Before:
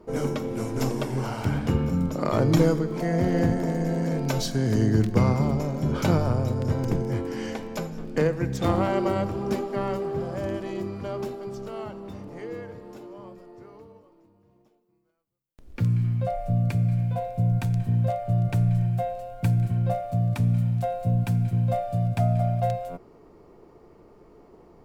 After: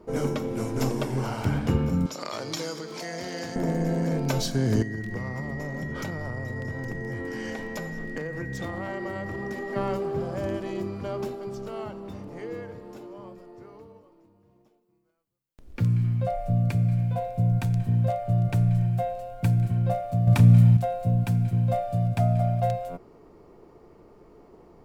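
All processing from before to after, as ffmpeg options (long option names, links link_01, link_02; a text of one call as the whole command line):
ffmpeg -i in.wav -filter_complex "[0:a]asettb=1/sr,asplit=3[link_01][link_02][link_03];[link_01]atrim=end=2.064[link_04];[link_02]atrim=start=2.06:end=3.56,asetpts=PTS-STARTPTS,afade=type=in:duration=0.004:curve=qsin,afade=type=out:start_time=1.496:duration=0.004:curve=qsin,highpass=frequency=790:poles=1,equalizer=frequency=5000:width=0.81:gain=12.5,acompressor=threshold=-33dB:ratio=2:attack=3.2:release=140:knee=1:detection=peak[link_05];[link_03]atrim=start=3.556[link_06];[link_04][link_05]acrossfade=duration=0.004:curve1=hsin:curve2=qsin[link_07];[link_07][link_06]acrossfade=duration=0.004:curve1=qsin:curve2=hsin,asettb=1/sr,asplit=3[link_08][link_09][link_10];[link_08]atrim=end=4.824[link_11];[link_09]atrim=start=4.82:end=9.76,asetpts=PTS-STARTPTS,afade=type=in:duration=0.004:curve=qsin,afade=type=out:start_time=4.936:duration=0.004:curve=qsin,acompressor=threshold=-29dB:ratio=10:attack=3.2:release=140:knee=1:detection=peak,aeval=exprs='val(0)+0.0112*sin(2*PI*1900*n/s)':channel_layout=same[link_12];[link_10]atrim=start=9.756[link_13];[link_11][link_12]acrossfade=duration=0.004:curve1=hsin:curve2=qsin[link_14];[link_14][link_13]acrossfade=duration=0.004:curve1=qsin:curve2=hsin,asettb=1/sr,asplit=3[link_15][link_16][link_17];[link_15]atrim=end=20.274[link_18];[link_16]atrim=start=20.27:end=20.77,asetpts=PTS-STARTPTS,afade=type=in:duration=0.004:curve=qsin,afade=type=out:start_time=0.496:duration=0.004:curve=qsin,acontrast=88,asplit=2[link_19][link_20];[link_20]adelay=33,volume=-12.5dB[link_21];[link_19][link_21]amix=inputs=2:normalize=0,atrim=end_sample=22050[link_22];[link_17]atrim=start=20.766[link_23];[link_18][link_22]acrossfade=duration=0.004:curve1=hsin:curve2=qsin[link_24];[link_24][link_23]acrossfade=duration=0.004:curve1=qsin:curve2=hsin" out.wav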